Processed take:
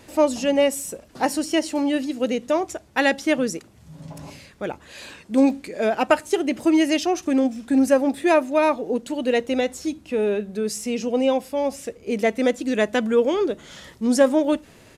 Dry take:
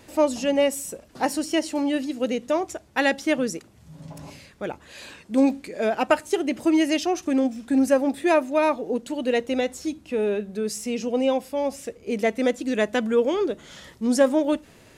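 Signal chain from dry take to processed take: resampled via 32 kHz; trim +2 dB

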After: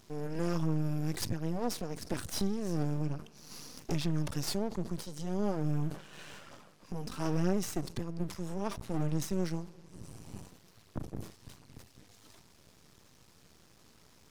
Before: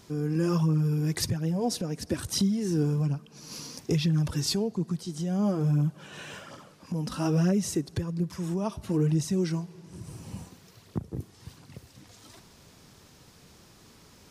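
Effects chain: half-wave rectifier; decay stretcher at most 140 dB/s; trim -3 dB

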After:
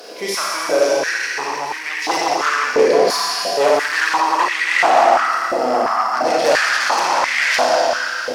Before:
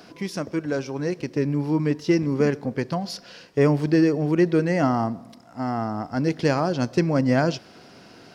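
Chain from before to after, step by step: treble shelf 3.6 kHz +11.5 dB; Schroeder reverb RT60 2.9 s, combs from 28 ms, DRR -6 dB; in parallel at -7.5 dB: sine folder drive 13 dB, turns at -1 dBFS; on the sum: step-sequenced high-pass 2.9 Hz 490–2000 Hz; trim -8 dB

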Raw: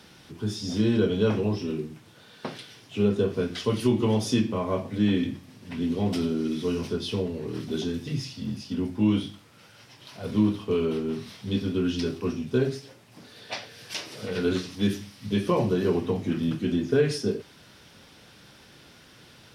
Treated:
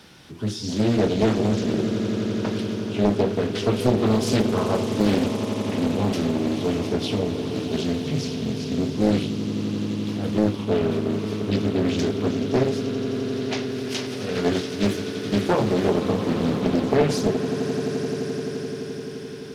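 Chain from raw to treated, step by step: echo with a slow build-up 86 ms, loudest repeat 8, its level -14.5 dB; loudspeaker Doppler distortion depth 0.87 ms; trim +3 dB

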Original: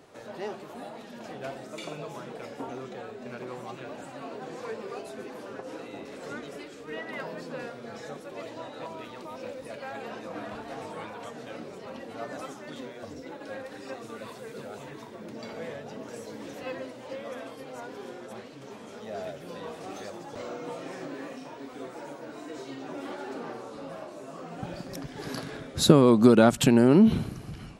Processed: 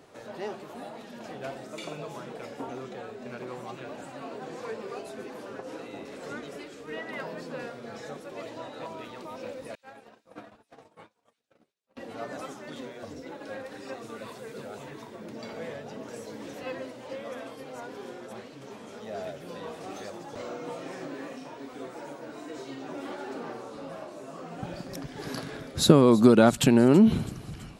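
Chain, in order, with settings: 9.75–11.97 s: gate -35 dBFS, range -58 dB; feedback echo behind a high-pass 328 ms, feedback 61%, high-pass 4.5 kHz, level -16.5 dB

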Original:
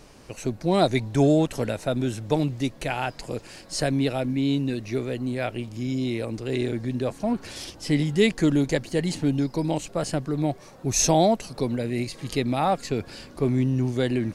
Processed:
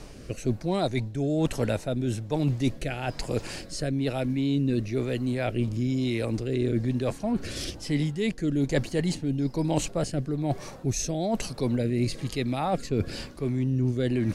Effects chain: bass shelf 110 Hz +5.5 dB; reverse; compression 10:1, threshold -28 dBFS, peak gain reduction 15 dB; reverse; rotary cabinet horn 1.1 Hz; trim +7 dB

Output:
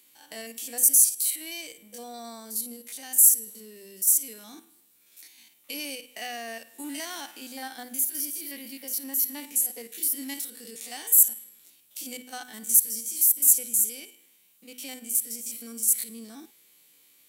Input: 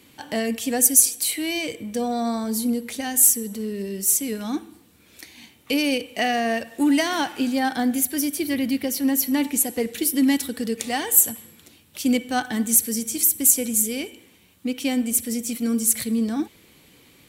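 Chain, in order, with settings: spectrogram pixelated in time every 50 ms; RIAA curve recording; hum notches 50/100/150/200/250 Hz; trim -13 dB

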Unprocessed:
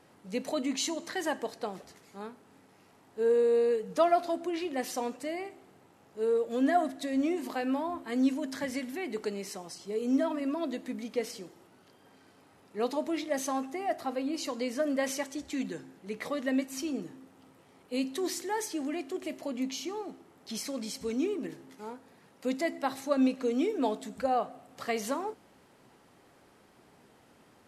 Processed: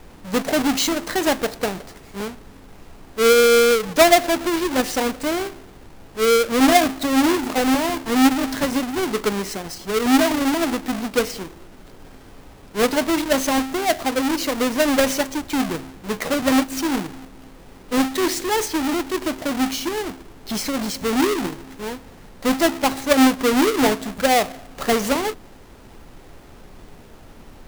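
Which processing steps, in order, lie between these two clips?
square wave that keeps the level; added noise brown -52 dBFS; trim +8 dB

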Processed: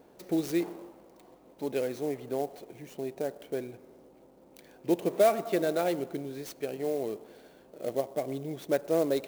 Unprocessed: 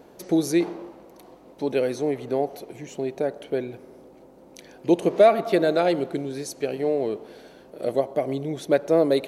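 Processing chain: sampling jitter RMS 0.028 ms; trim -7.5 dB

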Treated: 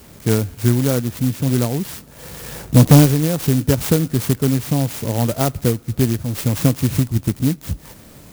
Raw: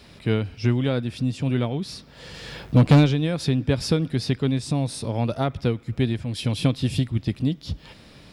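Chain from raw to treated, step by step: sampling jitter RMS 0.11 ms; trim +5.5 dB

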